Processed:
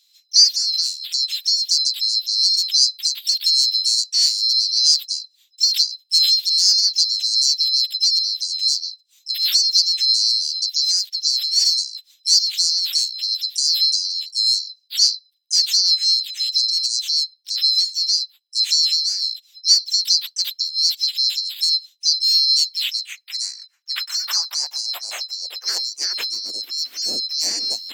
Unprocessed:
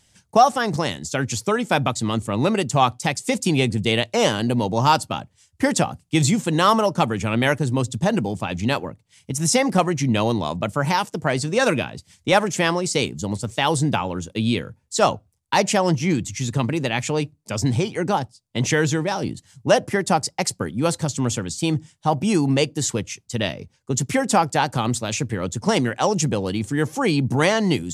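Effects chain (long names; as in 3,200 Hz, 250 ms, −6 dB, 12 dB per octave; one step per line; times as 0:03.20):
neighbouring bands swapped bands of 4,000 Hz
pitch-shifted copies added +4 semitones −5 dB
high-pass filter sweep 3,800 Hz → 270 Hz, 0:22.52–0:26.46
level −5.5 dB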